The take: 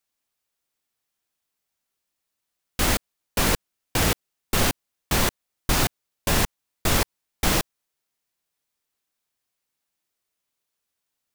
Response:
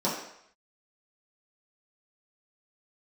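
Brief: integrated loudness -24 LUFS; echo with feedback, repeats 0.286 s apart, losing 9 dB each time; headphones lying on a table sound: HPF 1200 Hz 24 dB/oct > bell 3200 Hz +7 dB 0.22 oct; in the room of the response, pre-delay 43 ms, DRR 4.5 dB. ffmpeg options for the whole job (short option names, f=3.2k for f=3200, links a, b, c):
-filter_complex "[0:a]aecho=1:1:286|572|858|1144:0.355|0.124|0.0435|0.0152,asplit=2[a][b];[1:a]atrim=start_sample=2205,adelay=43[c];[b][c]afir=irnorm=-1:irlink=0,volume=-15.5dB[d];[a][d]amix=inputs=2:normalize=0,highpass=f=1.2k:w=0.5412,highpass=f=1.2k:w=1.3066,equalizer=f=3.2k:t=o:w=0.22:g=7,volume=1dB"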